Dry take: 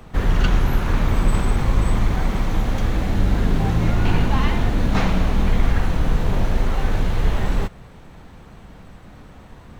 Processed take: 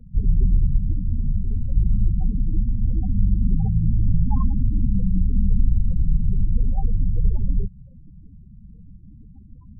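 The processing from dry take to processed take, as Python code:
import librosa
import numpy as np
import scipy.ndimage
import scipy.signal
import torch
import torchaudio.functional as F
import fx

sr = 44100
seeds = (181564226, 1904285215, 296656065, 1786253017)

y = fx.spec_topn(x, sr, count=8)
y = fx.ensemble(y, sr, at=(0.92, 1.75), fade=0.02)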